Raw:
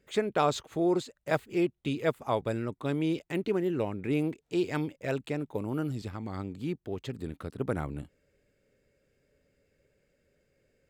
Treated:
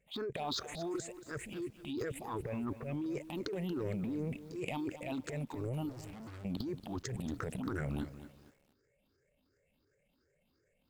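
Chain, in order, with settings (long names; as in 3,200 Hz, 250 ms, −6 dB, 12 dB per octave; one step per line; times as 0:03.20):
rippled gain that drifts along the octave scale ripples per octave 0.51, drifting +2.8 Hz, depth 23 dB
0:02.33–0:03.06: low-pass filter 2,700 Hz 24 dB per octave
0:04.03–0:04.46: low-shelf EQ 320 Hz +8 dB
downward compressor 5 to 1, threshold −25 dBFS, peak gain reduction 11.5 dB
transient designer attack −4 dB, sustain 0 dB
output level in coarse steps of 20 dB
transient designer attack −10 dB, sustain +10 dB
0:05.89–0:06.45: tube saturation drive 50 dB, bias 0.7
feedback echo at a low word length 231 ms, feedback 35%, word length 10 bits, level −13 dB
level +3.5 dB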